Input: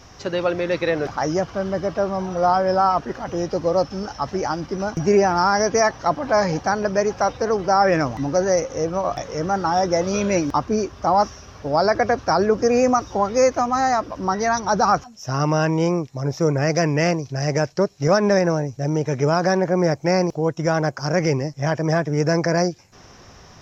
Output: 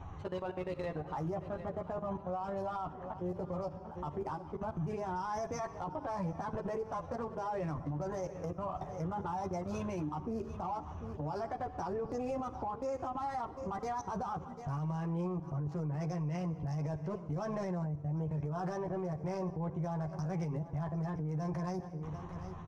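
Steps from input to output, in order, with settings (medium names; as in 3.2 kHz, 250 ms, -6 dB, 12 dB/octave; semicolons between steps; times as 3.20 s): local Wiener filter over 9 samples; ten-band graphic EQ 125 Hz +5 dB, 500 Hz -5 dB, 1 kHz +9 dB, 2 kHz -3 dB; in parallel at -8 dB: saturation -17.5 dBFS, distortion -9 dB; on the sum: level held to a coarse grid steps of 22 dB; low-pass 2.9 kHz 6 dB/octave; on a send at -16 dB: reverberation RT60 0.95 s, pre-delay 11 ms; on the sum: speed mistake 24 fps film run at 25 fps; chorus voices 6, 0.31 Hz, delay 12 ms, depth 1.5 ms; feedback delay 743 ms, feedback 27%, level -20 dB; compression 2.5:1, threshold -31 dBFS, peak gain reduction 9 dB; peaking EQ 1.5 kHz -7.5 dB 1.1 oct; peak limiter -30 dBFS, peak gain reduction 9.5 dB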